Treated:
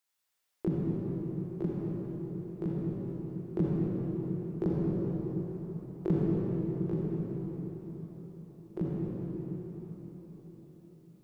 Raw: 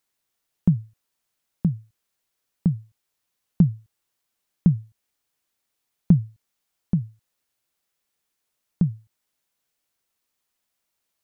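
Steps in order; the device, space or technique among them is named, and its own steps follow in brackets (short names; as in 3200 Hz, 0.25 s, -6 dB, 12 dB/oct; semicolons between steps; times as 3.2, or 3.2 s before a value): shimmer-style reverb (harmoniser +12 st -5 dB; reverb RT60 5.4 s, pre-delay 40 ms, DRR -5.5 dB); low shelf 470 Hz -9.5 dB; gain -6 dB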